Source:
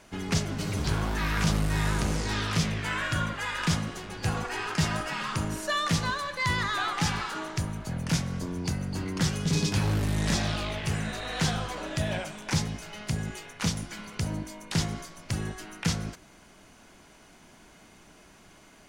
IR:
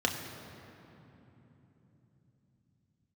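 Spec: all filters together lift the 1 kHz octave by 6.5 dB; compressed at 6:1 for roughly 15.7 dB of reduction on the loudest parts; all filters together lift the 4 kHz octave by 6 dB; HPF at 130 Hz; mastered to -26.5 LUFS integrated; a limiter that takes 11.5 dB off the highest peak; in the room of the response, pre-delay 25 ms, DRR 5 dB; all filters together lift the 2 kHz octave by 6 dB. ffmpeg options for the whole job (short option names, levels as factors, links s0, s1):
-filter_complex "[0:a]highpass=130,equalizer=f=1000:t=o:g=6.5,equalizer=f=2000:t=o:g=4,equalizer=f=4000:t=o:g=6,acompressor=threshold=0.0141:ratio=6,alimiter=level_in=2.24:limit=0.0631:level=0:latency=1,volume=0.447,asplit=2[s0][s1];[1:a]atrim=start_sample=2205,adelay=25[s2];[s1][s2]afir=irnorm=-1:irlink=0,volume=0.2[s3];[s0][s3]amix=inputs=2:normalize=0,volume=4.47"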